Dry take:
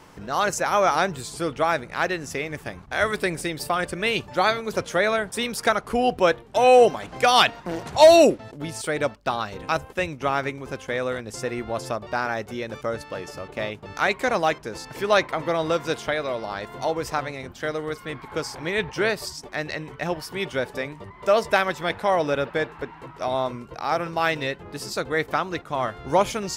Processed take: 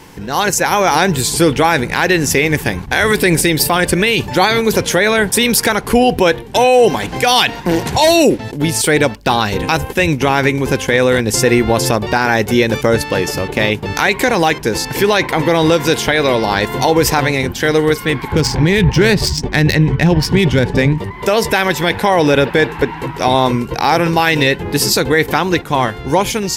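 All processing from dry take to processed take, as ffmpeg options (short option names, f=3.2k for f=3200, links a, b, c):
-filter_complex "[0:a]asettb=1/sr,asplit=3[a][b][c];[a]atrim=end=18.324[d];[b]atrim=start=18.32:end=20.98,asetpts=PTS-STARTPTS,afade=t=in:d=0.004:c=qsin,afade=t=out:st=2.656:d=0.004:c=qsin,bass=f=250:g=12,treble=f=4k:g=8,adynamicsmooth=sensitivity=2:basefreq=2.7k[e];[c]atrim=start=20.976[f];[d][e]acrossfade=d=0.004:c1=hsin:c2=qsin[g];[g][f]acrossfade=d=0.004:c1=qsin:c2=hsin,equalizer=f=630:t=o:w=0.33:g=-10,equalizer=f=1.25k:t=o:w=0.33:g=-11,equalizer=f=12.5k:t=o:w=0.33:g=8,dynaudnorm=f=120:g=17:m=9dB,alimiter=level_in=12.5dB:limit=-1dB:release=50:level=0:latency=1,volume=-1dB"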